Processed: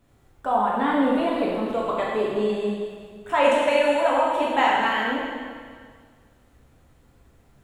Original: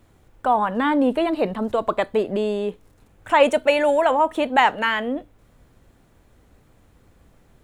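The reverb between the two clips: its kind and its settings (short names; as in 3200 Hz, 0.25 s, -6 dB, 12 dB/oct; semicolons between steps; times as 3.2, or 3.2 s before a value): plate-style reverb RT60 1.8 s, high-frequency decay 1×, DRR -5.5 dB; gain -8 dB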